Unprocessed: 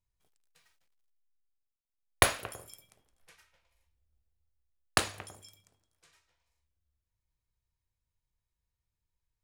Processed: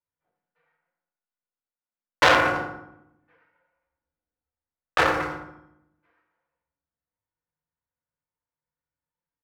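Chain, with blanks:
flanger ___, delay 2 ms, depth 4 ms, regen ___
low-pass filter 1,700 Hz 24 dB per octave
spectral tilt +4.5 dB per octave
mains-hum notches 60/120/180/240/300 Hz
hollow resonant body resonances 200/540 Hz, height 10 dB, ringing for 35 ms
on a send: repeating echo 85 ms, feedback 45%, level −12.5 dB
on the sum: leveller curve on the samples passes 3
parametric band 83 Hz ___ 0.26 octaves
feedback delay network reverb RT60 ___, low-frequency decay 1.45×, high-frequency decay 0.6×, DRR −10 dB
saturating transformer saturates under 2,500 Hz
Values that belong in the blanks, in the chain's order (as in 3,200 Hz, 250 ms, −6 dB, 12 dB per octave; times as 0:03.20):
1.8 Hz, −27%, −4 dB, 0.77 s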